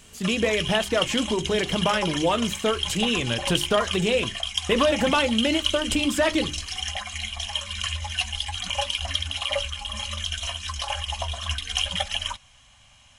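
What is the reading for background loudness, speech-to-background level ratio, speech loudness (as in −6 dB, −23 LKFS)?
−28.0 LKFS, 3.5 dB, −24.5 LKFS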